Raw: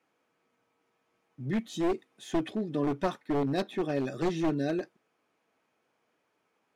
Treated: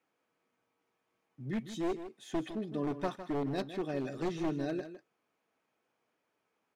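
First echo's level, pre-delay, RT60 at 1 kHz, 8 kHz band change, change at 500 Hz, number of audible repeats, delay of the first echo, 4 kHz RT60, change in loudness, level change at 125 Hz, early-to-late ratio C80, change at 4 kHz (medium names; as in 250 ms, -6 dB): -11.5 dB, no reverb, no reverb, -5.0 dB, -5.0 dB, 1, 157 ms, no reverb, -5.0 dB, -5.0 dB, no reverb, -5.0 dB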